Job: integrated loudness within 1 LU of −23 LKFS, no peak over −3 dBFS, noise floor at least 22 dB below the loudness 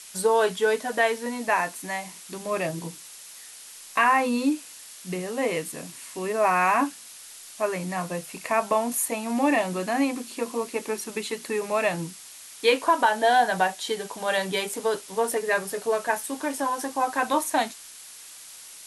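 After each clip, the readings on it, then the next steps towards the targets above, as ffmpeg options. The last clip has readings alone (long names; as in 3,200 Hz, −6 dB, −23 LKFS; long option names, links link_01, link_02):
background noise floor −45 dBFS; target noise floor −48 dBFS; integrated loudness −25.5 LKFS; sample peak −8.5 dBFS; target loudness −23.0 LKFS
→ -af "afftdn=noise_reduction=6:noise_floor=-45"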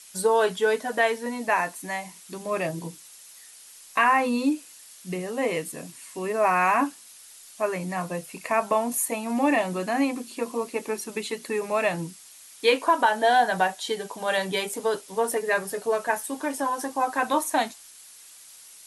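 background noise floor −49 dBFS; integrated loudness −25.5 LKFS; sample peak −8.5 dBFS; target loudness −23.0 LKFS
→ -af "volume=2.5dB"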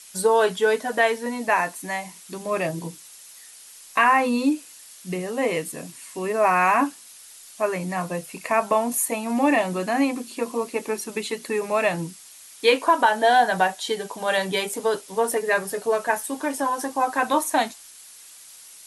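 integrated loudness −23.0 LKFS; sample peak −6.0 dBFS; background noise floor −46 dBFS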